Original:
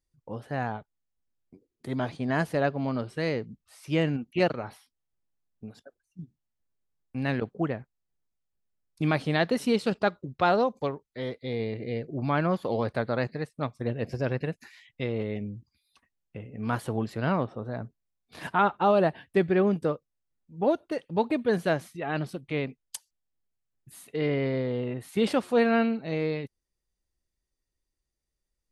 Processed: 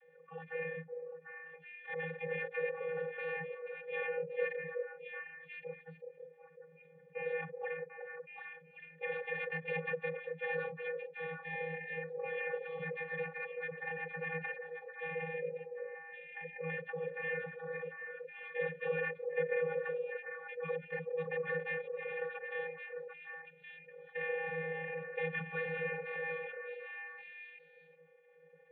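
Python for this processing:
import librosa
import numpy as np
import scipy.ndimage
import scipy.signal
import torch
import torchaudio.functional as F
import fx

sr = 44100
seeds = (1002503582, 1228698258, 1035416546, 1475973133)

p1 = fx.spec_gate(x, sr, threshold_db=-25, keep='weak')
p2 = fx.vocoder(p1, sr, bands=32, carrier='square', carrier_hz=162.0)
p3 = fx.backlash(p2, sr, play_db=-60.0)
p4 = p2 + F.gain(torch.from_numpy(p3), -7.0).numpy()
p5 = fx.formant_cascade(p4, sr, vowel='e')
p6 = fx.notch_comb(p5, sr, f0_hz=990.0)
p7 = p6 + fx.echo_stepped(p6, sr, ms=373, hz=470.0, octaves=1.4, feedback_pct=70, wet_db=-8, dry=0)
p8 = fx.env_flatten(p7, sr, amount_pct=50)
y = F.gain(torch.from_numpy(p8), 12.0).numpy()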